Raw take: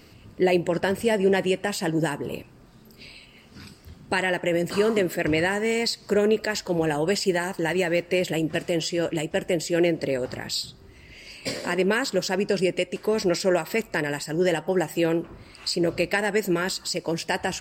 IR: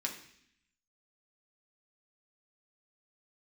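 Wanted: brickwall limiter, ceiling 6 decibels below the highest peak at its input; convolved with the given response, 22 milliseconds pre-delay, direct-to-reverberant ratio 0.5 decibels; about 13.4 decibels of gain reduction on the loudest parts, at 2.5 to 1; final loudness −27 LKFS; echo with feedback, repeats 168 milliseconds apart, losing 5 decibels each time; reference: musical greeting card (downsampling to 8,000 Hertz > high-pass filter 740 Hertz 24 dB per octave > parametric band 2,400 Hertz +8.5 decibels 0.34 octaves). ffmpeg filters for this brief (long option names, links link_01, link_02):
-filter_complex "[0:a]acompressor=threshold=-38dB:ratio=2.5,alimiter=level_in=3dB:limit=-24dB:level=0:latency=1,volume=-3dB,aecho=1:1:168|336|504|672|840|1008|1176:0.562|0.315|0.176|0.0988|0.0553|0.031|0.0173,asplit=2[link_01][link_02];[1:a]atrim=start_sample=2205,adelay=22[link_03];[link_02][link_03]afir=irnorm=-1:irlink=0,volume=-2.5dB[link_04];[link_01][link_04]amix=inputs=2:normalize=0,aresample=8000,aresample=44100,highpass=frequency=740:width=0.5412,highpass=frequency=740:width=1.3066,equalizer=frequency=2400:width_type=o:width=0.34:gain=8.5,volume=10dB"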